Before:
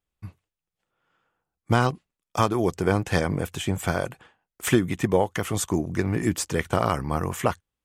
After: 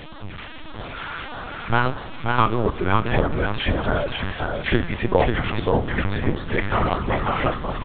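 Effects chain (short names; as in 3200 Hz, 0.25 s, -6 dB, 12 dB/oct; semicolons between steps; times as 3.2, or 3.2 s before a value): zero-crossing step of -29.5 dBFS; bell 1300 Hz +6 dB 2.8 oct; de-hum 405.2 Hz, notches 27; LFO notch sine 1.6 Hz 390–2500 Hz; on a send: echo 0.541 s -3.5 dB; on the sum: Schroeder reverb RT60 0.38 s, combs from 31 ms, DRR 14 dB; LPC vocoder at 8 kHz pitch kept; warbling echo 0.196 s, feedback 70%, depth 79 cents, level -22.5 dB; gain -1 dB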